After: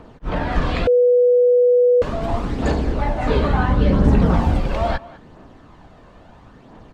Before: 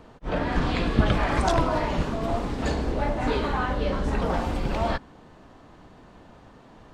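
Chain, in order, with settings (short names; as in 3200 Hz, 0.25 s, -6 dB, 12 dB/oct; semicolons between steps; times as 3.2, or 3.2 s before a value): high shelf 4900 Hz -5 dB; phaser 0.74 Hz, delay 1.9 ms, feedback 35%; 3.29–4.61 bell 130 Hz +9.5 dB 2.5 oct; speakerphone echo 0.2 s, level -18 dB; 0.87–2.02 bleep 491 Hz -14 dBFS; gain +3.5 dB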